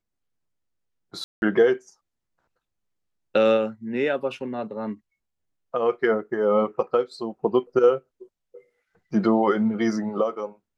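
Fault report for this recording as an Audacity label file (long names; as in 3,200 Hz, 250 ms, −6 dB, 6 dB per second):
1.240000	1.420000	drop-out 181 ms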